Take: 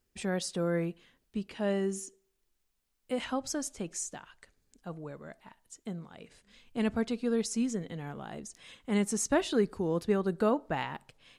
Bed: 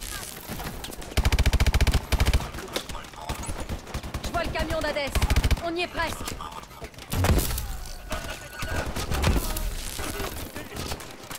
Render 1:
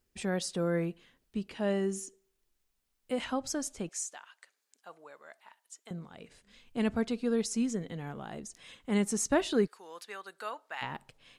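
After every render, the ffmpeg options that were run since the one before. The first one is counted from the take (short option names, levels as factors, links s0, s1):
-filter_complex "[0:a]asettb=1/sr,asplit=3[s0][s1][s2];[s0]atrim=end=3.894[s3];[s1]atrim=start=3.89:end=5.91,asetpts=PTS-STARTPTS,afade=t=in:d=0.004:c=qsin,afade=t=out:st=2.016:d=0.004:c=qsin,highpass=780[s4];[s2]atrim=start=5.906[s5];[s3][s4]acrossfade=d=0.004:c1=hsin:c2=qsin[s6];[s6][s5]acrossfade=d=0.004:c1=qsin:c2=hsin,asplit=3[s7][s8][s9];[s7]afade=t=out:st=9.66:d=0.02[s10];[s8]highpass=1300,afade=t=in:st=9.66:d=0.02,afade=t=out:st=10.81:d=0.02[s11];[s9]afade=t=in:st=10.81:d=0.02[s12];[s10][s11][s12]amix=inputs=3:normalize=0"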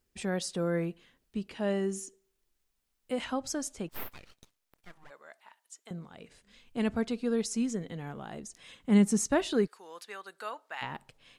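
-filter_complex "[0:a]asplit=3[s0][s1][s2];[s0]afade=t=out:st=3.88:d=0.02[s3];[s1]aeval=exprs='abs(val(0))':c=same,afade=t=in:st=3.88:d=0.02,afade=t=out:st=5.09:d=0.02[s4];[s2]afade=t=in:st=5.09:d=0.02[s5];[s3][s4][s5]amix=inputs=3:normalize=0,asettb=1/sr,asplit=3[s6][s7][s8];[s6]atrim=end=8.804[s9];[s7]atrim=start=8.8:end=9.25,asetpts=PTS-STARTPTS,afade=t=in:d=0.004:c=qsin,afade=t=out:st=0.446:d=0.004:c=qsin,equalizer=f=170:w=0.86:g=8[s10];[s8]atrim=start=9.246[s11];[s9][s10]acrossfade=d=0.004:c1=hsin:c2=qsin[s12];[s12][s11]acrossfade=d=0.004:c1=qsin:c2=hsin"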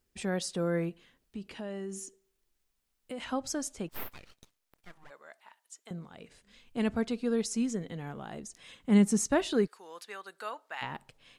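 -filter_complex "[0:a]asettb=1/sr,asplit=3[s0][s1][s2];[s0]atrim=end=0.894[s3];[s1]atrim=start=0.89:end=3.3,asetpts=PTS-STARTPTS,afade=t=in:d=0.004:c=qsin,afade=t=out:st=2.406:d=0.004:c=qsin,acompressor=threshold=0.0141:ratio=3:attack=3.2:release=140:knee=1:detection=peak[s4];[s2]atrim=start=3.296[s5];[s3][s4]acrossfade=d=0.004:c1=hsin:c2=qsin[s6];[s6][s5]acrossfade=d=0.004:c1=qsin:c2=hsin"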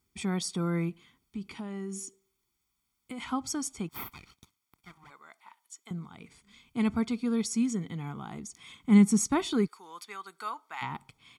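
-af "highpass=62,aecho=1:1:0.9:0.78"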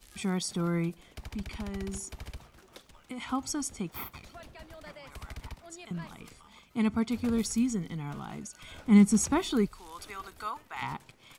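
-filter_complex "[1:a]volume=0.0891[s0];[0:a][s0]amix=inputs=2:normalize=0"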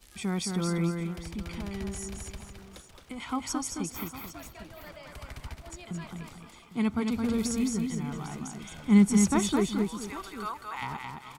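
-af "aecho=1:1:218|441|803:0.596|0.2|0.178"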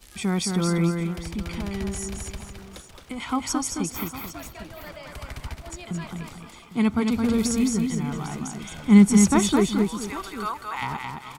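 -af "volume=2"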